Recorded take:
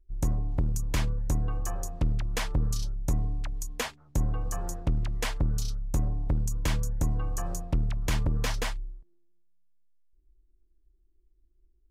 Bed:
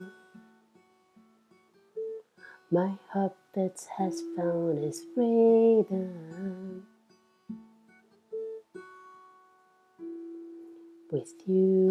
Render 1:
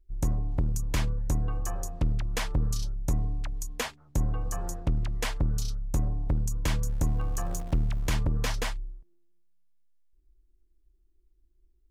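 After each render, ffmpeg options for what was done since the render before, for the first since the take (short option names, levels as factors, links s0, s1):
-filter_complex "[0:a]asettb=1/sr,asplit=3[s0][s1][s2];[s0]atrim=end=6.824[s3];[s1]atrim=start=6.82:end=8.08,asetpts=PTS-STARTPTS,afade=t=in:d=0.004:c=qsin,afade=t=out:st=1.256:d=0.004:c=qsin,aeval=exprs='val(0)+0.5*0.00944*sgn(val(0))':c=same[s4];[s2]atrim=start=8.076[s5];[s3][s4]acrossfade=d=0.004:c1=hsin:c2=qsin[s6];[s6][s5]acrossfade=d=0.004:c1=qsin:c2=hsin"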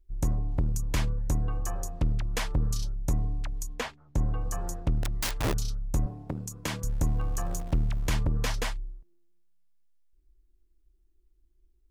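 -filter_complex "[0:a]asettb=1/sr,asplit=3[s0][s1][s2];[s0]atrim=end=3.744[s3];[s1]atrim=start=3.74:end=4.26,asetpts=PTS-STARTPTS,afade=t=in:d=0.004:c=qsin,afade=t=out:st=0.516:d=0.004:c=qsin,lowpass=f=3300:p=1[s4];[s2]atrim=start=4.256[s5];[s3][s4]acrossfade=d=0.004:c1=hsin:c2=qsin[s6];[s6][s5]acrossfade=d=0.004:c1=qsin:c2=hsin,asplit=3[s7][s8][s9];[s7]afade=t=out:st=5.02:d=0.02[s10];[s8]aeval=exprs='(mod(15*val(0)+1,2)-1)/15':c=same,afade=t=in:st=5.02:d=0.02,afade=t=out:st=5.52:d=0.02[s11];[s9]afade=t=in:st=5.52:d=0.02[s12];[s10][s11][s12]amix=inputs=3:normalize=0,asettb=1/sr,asplit=3[s13][s14][s15];[s13]atrim=end=6.064[s16];[s14]atrim=start=6.06:end=6.84,asetpts=PTS-STARTPTS,afade=t=in:d=0.004:c=qsin,afade=t=out:st=0.776:d=0.004:c=qsin,highpass=150[s17];[s15]atrim=start=6.836[s18];[s16][s17]acrossfade=d=0.004:c1=hsin:c2=qsin[s19];[s19][s18]acrossfade=d=0.004:c1=qsin:c2=hsin"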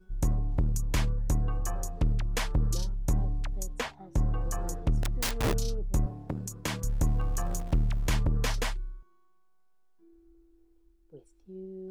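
-filter_complex "[1:a]volume=0.112[s0];[0:a][s0]amix=inputs=2:normalize=0"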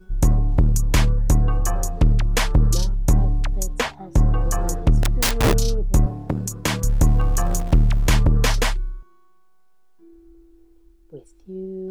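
-af "volume=3.35"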